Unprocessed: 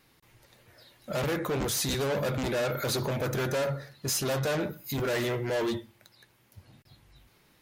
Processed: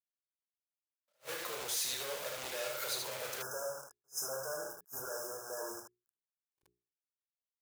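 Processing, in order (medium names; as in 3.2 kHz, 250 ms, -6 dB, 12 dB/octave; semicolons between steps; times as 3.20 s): recorder AGC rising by 6.1 dB/s; spectral noise reduction 15 dB; bit crusher 6-bit; compression, threshold -31 dBFS, peak gain reduction 5.5 dB; tilt shelf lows -5.5 dB, about 1.3 kHz; hum notches 60/120/180/240/300/360/420 Hz; early reflections 32 ms -8.5 dB, 77 ms -4.5 dB; spectral selection erased 3.42–6.11 s, 1.7–5 kHz; resonant low shelf 350 Hz -11 dB, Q 1.5; attacks held to a fixed rise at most 380 dB/s; trim -6.5 dB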